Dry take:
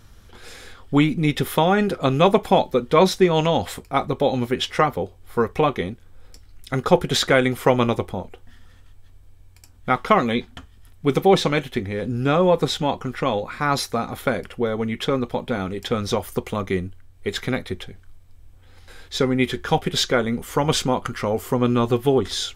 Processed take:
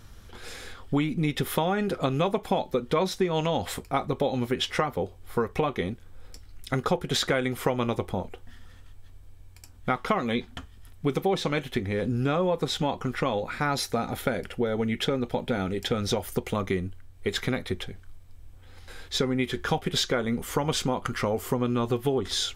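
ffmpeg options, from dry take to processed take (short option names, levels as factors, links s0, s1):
-filter_complex "[0:a]asettb=1/sr,asplit=3[s0][s1][s2];[s0]atrim=end=13.444[s3];[s1]atrim=start=13.44:end=16.55,asetpts=PTS-STARTPTS,afade=t=in:d=0.004:c=qsin,afade=t=out:st=3.106:d=0.004:c=qsin,bandreject=f=1100:w=5.6[s4];[s2]atrim=start=16.546[s5];[s3][s4]acrossfade=d=0.004:c1=hsin:c2=qsin[s6];[s6][s5]acrossfade=d=0.004:c1=qsin:c2=hsin,acompressor=threshold=0.0708:ratio=4"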